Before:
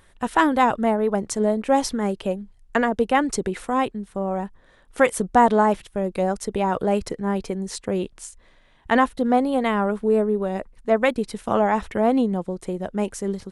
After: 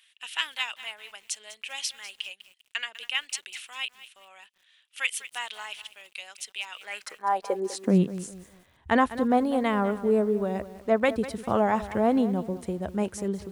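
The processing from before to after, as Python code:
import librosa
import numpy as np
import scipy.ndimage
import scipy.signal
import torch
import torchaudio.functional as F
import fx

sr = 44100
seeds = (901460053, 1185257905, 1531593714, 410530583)

y = fx.filter_sweep_highpass(x, sr, from_hz=2800.0, to_hz=74.0, start_s=6.76, end_s=8.39, q=4.4)
y = fx.echo_crushed(y, sr, ms=199, feedback_pct=35, bits=7, wet_db=-14.5)
y = y * 10.0 ** (-4.0 / 20.0)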